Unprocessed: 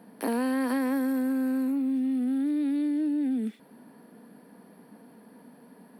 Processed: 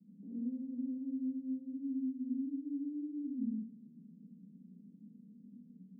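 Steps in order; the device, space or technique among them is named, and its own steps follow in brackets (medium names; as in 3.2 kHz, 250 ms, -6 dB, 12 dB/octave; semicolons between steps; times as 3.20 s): club heard from the street (peak limiter -25 dBFS, peak gain reduction 7 dB; low-pass 130 Hz 24 dB/octave; reverberation RT60 0.65 s, pre-delay 66 ms, DRR -6 dB); steep high-pass 180 Hz 48 dB/octave; trim +10 dB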